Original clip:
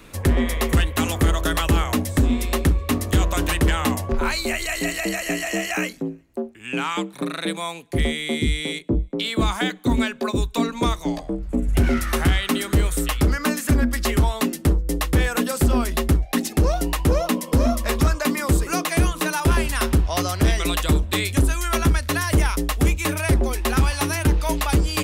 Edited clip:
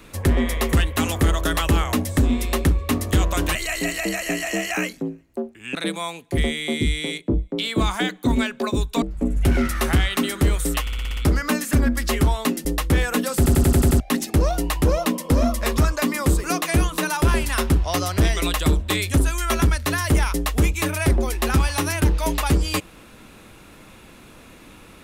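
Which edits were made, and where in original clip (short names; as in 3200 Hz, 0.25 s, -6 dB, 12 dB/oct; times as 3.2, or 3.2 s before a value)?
3.55–4.55 cut
6.75–7.36 cut
10.63–11.34 cut
13.13 stutter 0.06 s, 7 plays
14.61–14.88 cut
15.6 stutter in place 0.09 s, 7 plays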